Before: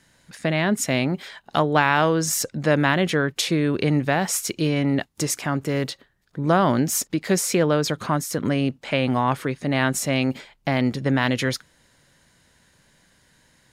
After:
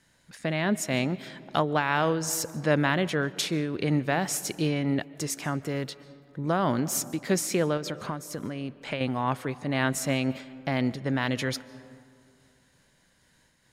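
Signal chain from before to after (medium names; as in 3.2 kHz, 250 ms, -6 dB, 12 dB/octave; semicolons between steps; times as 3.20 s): 7.77–9.01 s: compression 5:1, threshold -25 dBFS, peak gain reduction 8 dB; algorithmic reverb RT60 2.4 s, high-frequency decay 0.4×, pre-delay 100 ms, DRR 17.5 dB; random flutter of the level, depth 55%; trim -3.5 dB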